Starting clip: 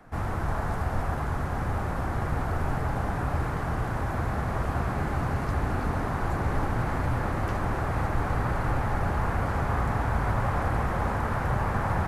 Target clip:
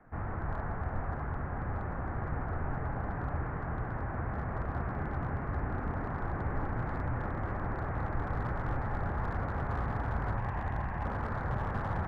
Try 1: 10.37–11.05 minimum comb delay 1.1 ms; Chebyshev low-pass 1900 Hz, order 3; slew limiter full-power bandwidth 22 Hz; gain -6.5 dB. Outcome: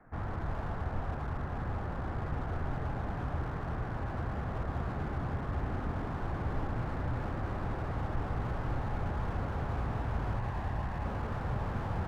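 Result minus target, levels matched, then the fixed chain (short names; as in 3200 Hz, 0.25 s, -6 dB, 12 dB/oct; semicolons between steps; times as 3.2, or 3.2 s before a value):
slew limiter: distortion +17 dB
10.37–11.05 minimum comb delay 1.1 ms; Chebyshev low-pass 1900 Hz, order 3; slew limiter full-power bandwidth 50.5 Hz; gain -6.5 dB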